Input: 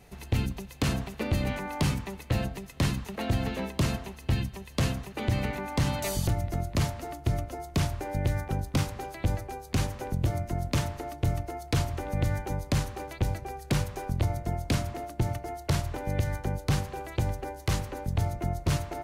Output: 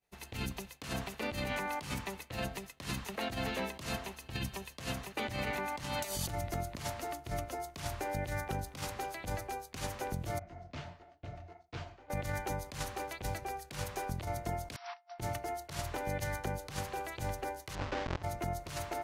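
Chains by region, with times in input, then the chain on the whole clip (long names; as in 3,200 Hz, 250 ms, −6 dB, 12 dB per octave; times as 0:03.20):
0:04.16–0:04.74: compressor whose output falls as the input rises −28 dBFS, ratio −0.5 + notch filter 2,000 Hz, Q 14
0:10.39–0:12.10: high-frequency loss of the air 180 metres + tuned comb filter 86 Hz, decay 1.2 s + micro pitch shift up and down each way 56 cents
0:14.76–0:15.19: linear-phase brick-wall band-pass 660–5,900 Hz + compressor whose output falls as the input rises −45 dBFS, ratio −0.5
0:17.75–0:18.23: each half-wave held at its own peak + low-pass filter 6,400 Hz 24 dB per octave + high-shelf EQ 4,000 Hz −11 dB
whole clip: downward expander −39 dBFS; low-shelf EQ 390 Hz −11 dB; compressor whose output falls as the input rises −36 dBFS, ratio −0.5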